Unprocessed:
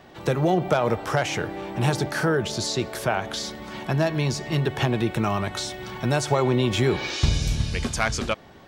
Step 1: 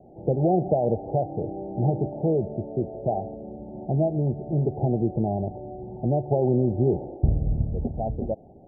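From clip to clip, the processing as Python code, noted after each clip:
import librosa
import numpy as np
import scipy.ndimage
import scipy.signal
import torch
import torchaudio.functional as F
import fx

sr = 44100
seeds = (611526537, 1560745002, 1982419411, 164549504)

y = scipy.signal.sosfilt(scipy.signal.butter(16, 800.0, 'lowpass', fs=sr, output='sos'), x)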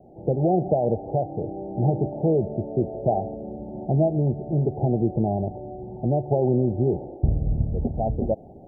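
y = fx.rider(x, sr, range_db=10, speed_s=2.0)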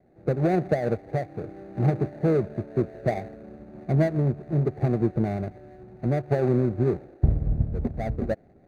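y = scipy.signal.medfilt(x, 41)
y = fx.upward_expand(y, sr, threshold_db=-39.0, expansion=1.5)
y = F.gain(torch.from_numpy(y), 1.5).numpy()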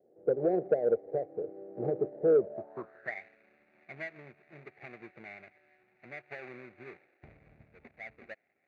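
y = fx.filter_sweep_bandpass(x, sr, from_hz=470.0, to_hz=2300.0, start_s=2.4, end_s=3.22, q=4.4)
y = 10.0 ** (-18.0 / 20.0) * np.tanh(y / 10.0 ** (-18.0 / 20.0))
y = F.gain(torch.from_numpy(y), 3.5).numpy()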